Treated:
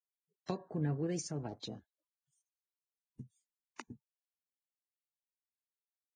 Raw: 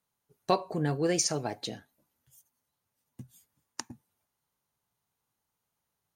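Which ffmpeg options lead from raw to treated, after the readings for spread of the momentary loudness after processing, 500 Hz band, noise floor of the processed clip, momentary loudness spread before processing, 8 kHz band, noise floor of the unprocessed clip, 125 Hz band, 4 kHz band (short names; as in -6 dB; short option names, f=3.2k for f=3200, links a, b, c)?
20 LU, -11.0 dB, under -85 dBFS, 16 LU, -15.0 dB, -84 dBFS, -3.5 dB, -14.0 dB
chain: -filter_complex "[0:a]afwtdn=0.00562,acrossover=split=310[a][b];[b]acompressor=threshold=-40dB:ratio=8[c];[a][c]amix=inputs=2:normalize=0,volume=-3dB" -ar 22050 -c:a libvorbis -b:a 16k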